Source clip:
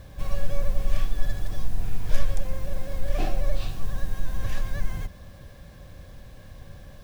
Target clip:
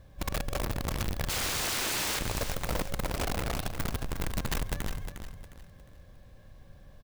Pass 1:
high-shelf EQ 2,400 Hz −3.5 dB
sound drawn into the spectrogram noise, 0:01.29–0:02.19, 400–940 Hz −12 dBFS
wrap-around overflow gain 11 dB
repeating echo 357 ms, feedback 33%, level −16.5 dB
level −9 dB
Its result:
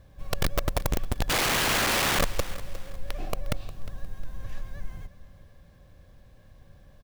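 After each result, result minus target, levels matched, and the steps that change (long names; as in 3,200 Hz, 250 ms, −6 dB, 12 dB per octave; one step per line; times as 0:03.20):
wrap-around overflow: distortion −23 dB; echo-to-direct −8 dB
change: wrap-around overflow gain 18 dB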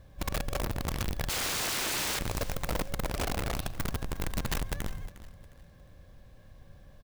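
echo-to-direct −8 dB
change: repeating echo 357 ms, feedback 33%, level −8.5 dB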